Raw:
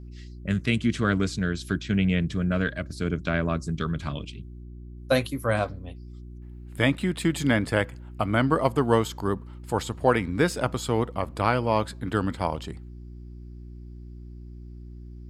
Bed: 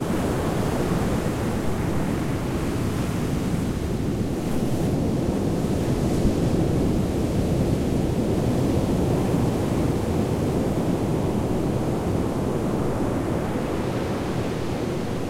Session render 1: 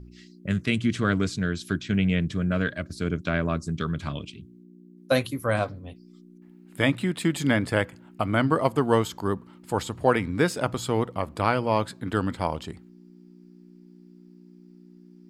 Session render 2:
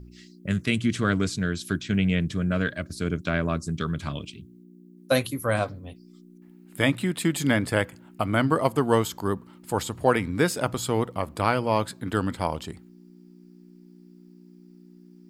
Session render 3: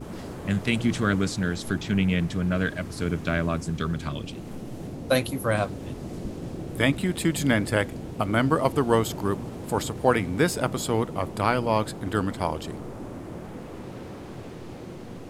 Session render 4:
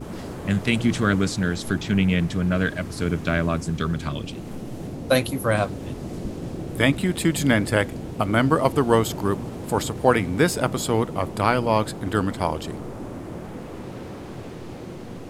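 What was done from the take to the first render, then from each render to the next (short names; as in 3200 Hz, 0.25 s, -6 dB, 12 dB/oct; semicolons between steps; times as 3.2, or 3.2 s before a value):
de-hum 60 Hz, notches 2
high shelf 8800 Hz +10 dB
add bed -13.5 dB
gain +3 dB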